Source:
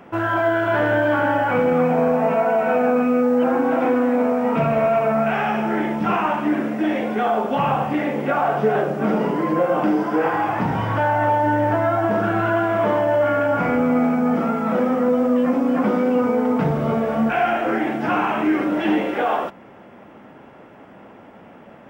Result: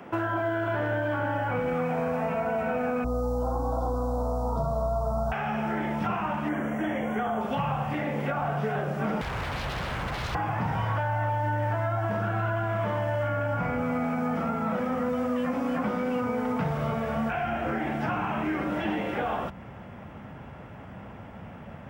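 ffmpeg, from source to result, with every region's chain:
ffmpeg -i in.wav -filter_complex "[0:a]asettb=1/sr,asplit=3[link_01][link_02][link_03];[link_01]atrim=end=3.044[link_04];[link_02]atrim=start=3.04:end=5.32,asetpts=PTS-STARTPTS,afade=type=in:duration=0.004:curve=qsin,afade=type=out:start_time=2.276:duration=0.004:curve=qsin,asuperstop=centerf=2200:order=8:qfactor=0.71,aeval=exprs='val(0)+0.0447*(sin(2*PI*60*n/s)+sin(2*PI*2*60*n/s)/2+sin(2*PI*3*60*n/s)/3+sin(2*PI*4*60*n/s)/4+sin(2*PI*5*60*n/s)/5)':channel_layout=same[link_05];[link_03]atrim=start=5.316[link_06];[link_04][link_05]acrossfade=duration=0.004:curve1=hsin:curve2=qsin[link_07];[link_07][link_06]acrossfade=duration=0.004:curve1=qsin:curve2=hsin,asettb=1/sr,asplit=3[link_08][link_09][link_10];[link_08]atrim=end=6.494[link_11];[link_09]atrim=start=6.49:end=7.41,asetpts=PTS-STARTPTS,afade=type=in:duration=0.004:curve=qsin,afade=type=out:start_time=0.916:duration=0.004:curve=qsin,asuperstop=centerf=4400:order=12:qfactor=1.8,equalizer=frequency=2600:width_type=o:width=0.22:gain=-9[link_12];[link_10]atrim=start=7.406[link_13];[link_11][link_12]acrossfade=duration=0.004:curve1=hsin:curve2=qsin[link_14];[link_14][link_13]acrossfade=duration=0.004:curve1=qsin:curve2=hsin,asettb=1/sr,asplit=3[link_15][link_16][link_17];[link_15]atrim=end=9.214[link_18];[link_16]atrim=start=9.21:end=10.35,asetpts=PTS-STARTPTS,afade=type=in:duration=0.004:curve=qsin,afade=type=out:start_time=1.136:duration=0.004:curve=qsin,equalizer=frequency=240:width=2.1:gain=7.5,bandreject=frequency=50:width_type=h:width=6,bandreject=frequency=100:width_type=h:width=6,bandreject=frequency=150:width_type=h:width=6,bandreject=frequency=200:width_type=h:width=6,bandreject=frequency=250:width_type=h:width=6,bandreject=frequency=300:width_type=h:width=6,bandreject=frequency=350:width_type=h:width=6,bandreject=frequency=400:width_type=h:width=6,bandreject=frequency=450:width_type=h:width=6,bandreject=frequency=500:width_type=h:width=6,aeval=exprs='0.0596*(abs(mod(val(0)/0.0596+3,4)-2)-1)':channel_layout=same[link_19];[link_17]atrim=start=10.346[link_20];[link_18][link_19]acrossfade=duration=0.004:curve1=hsin:curve2=qsin[link_21];[link_21][link_20]acrossfade=duration=0.004:curve1=qsin:curve2=hsin,highpass=52,asubboost=boost=10.5:cutoff=98,acrossover=split=370|1200[link_22][link_23][link_24];[link_22]acompressor=threshold=-32dB:ratio=4[link_25];[link_23]acompressor=threshold=-32dB:ratio=4[link_26];[link_24]acompressor=threshold=-38dB:ratio=4[link_27];[link_25][link_26][link_27]amix=inputs=3:normalize=0" out.wav

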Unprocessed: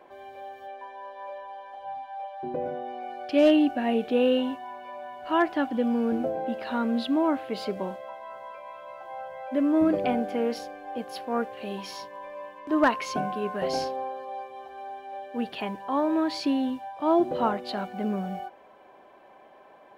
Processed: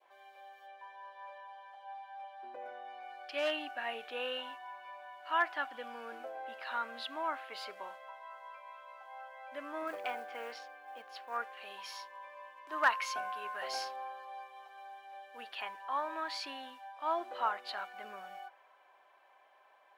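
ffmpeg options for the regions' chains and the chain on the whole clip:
ffmpeg -i in.wav -filter_complex "[0:a]asettb=1/sr,asplit=3[link_01][link_02][link_03];[link_01]atrim=end=9.874[link_04];[link_02]atrim=start=9.87:end=11.37,asetpts=PTS-STARTPTS,afade=type=in:duration=0.004:curve=qsin,afade=type=out:start_time=1.496:duration=0.004:curve=qsin,adynamicsmooth=sensitivity=4:basefreq=4800,acrusher=bits=9:mode=log:mix=0:aa=0.000001[link_05];[link_03]atrim=start=11.366[link_06];[link_04][link_05]acrossfade=duration=0.004:curve1=hsin:curve2=qsin[link_07];[link_07][link_06]acrossfade=duration=0.004:curve1=qsin:curve2=hsin,asettb=1/sr,asplit=3[link_08][link_09][link_10];[link_08]atrim=end=12.574[link_11];[link_09]atrim=start=12.57:end=15.43,asetpts=PTS-STARTPTS,afade=type=in:duration=0.004:curve=qsin,afade=type=out:start_time=2.856:duration=0.004:curve=qsin,highpass=61,highshelf=frequency=6800:gain=5[link_12];[link_10]atrim=start=15.426[link_13];[link_11][link_12]acrossfade=duration=0.004:curve1=hsin:curve2=qsin[link_14];[link_14][link_13]acrossfade=duration=0.004:curve1=qsin:curve2=hsin,highpass=1000,adynamicequalizer=threshold=0.00501:dfrequency=1400:dqfactor=0.81:tfrequency=1400:tqfactor=0.81:attack=5:release=100:ratio=0.375:range=3:mode=boostabove:tftype=bell,volume=-6.5dB" out.wav

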